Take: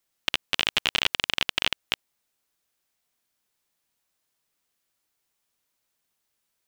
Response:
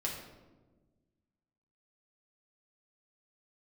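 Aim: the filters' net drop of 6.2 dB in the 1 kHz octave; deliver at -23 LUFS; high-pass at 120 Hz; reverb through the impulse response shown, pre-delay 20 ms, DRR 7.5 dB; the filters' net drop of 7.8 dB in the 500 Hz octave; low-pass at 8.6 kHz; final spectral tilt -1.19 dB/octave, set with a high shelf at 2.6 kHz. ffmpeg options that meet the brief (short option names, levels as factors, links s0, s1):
-filter_complex "[0:a]highpass=120,lowpass=8600,equalizer=f=500:t=o:g=-8.5,equalizer=f=1000:t=o:g=-4.5,highshelf=f=2600:g=-7,asplit=2[s0][s1];[1:a]atrim=start_sample=2205,adelay=20[s2];[s1][s2]afir=irnorm=-1:irlink=0,volume=0.316[s3];[s0][s3]amix=inputs=2:normalize=0,volume=2.24"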